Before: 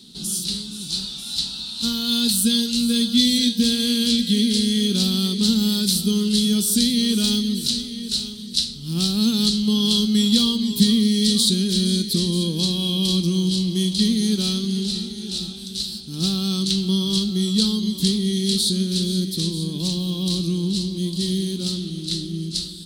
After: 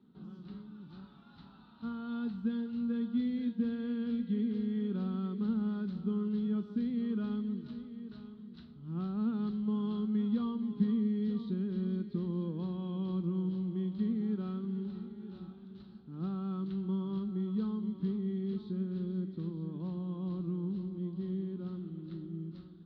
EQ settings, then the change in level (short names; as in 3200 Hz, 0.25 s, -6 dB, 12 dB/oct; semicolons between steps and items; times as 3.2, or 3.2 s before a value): HPF 80 Hz 12 dB/oct; ladder low-pass 1500 Hz, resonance 45%; air absorption 56 m; -3.5 dB